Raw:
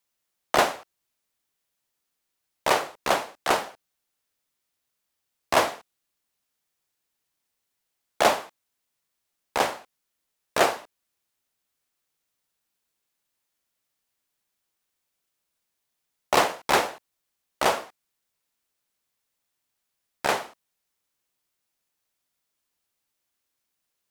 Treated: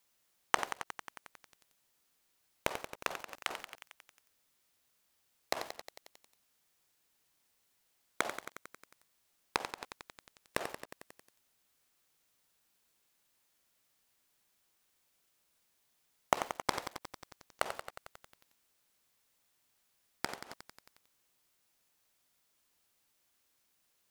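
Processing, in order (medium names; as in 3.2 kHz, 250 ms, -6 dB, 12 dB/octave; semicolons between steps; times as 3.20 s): inverted gate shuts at -24 dBFS, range -28 dB; bit-crushed delay 90 ms, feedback 80%, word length 8-bit, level -9 dB; trim +4.5 dB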